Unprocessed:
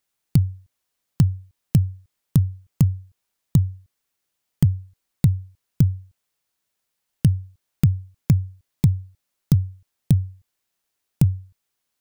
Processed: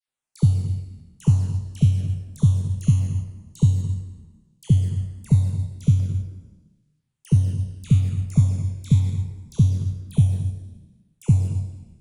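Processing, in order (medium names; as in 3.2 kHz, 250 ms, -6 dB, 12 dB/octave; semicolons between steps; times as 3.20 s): spectral sustain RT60 1.12 s; resampled via 22.05 kHz; touch-sensitive flanger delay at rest 7.8 ms, full sweep at -14 dBFS; phase dispersion lows, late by 77 ms, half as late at 1.3 kHz; LFO notch saw down 1 Hz 570–8000 Hz; thinning echo 113 ms, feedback 64%, high-pass 180 Hz, level -21.5 dB; gated-style reverb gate 270 ms rising, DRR 7.5 dB; upward expansion 1.5:1, over -24 dBFS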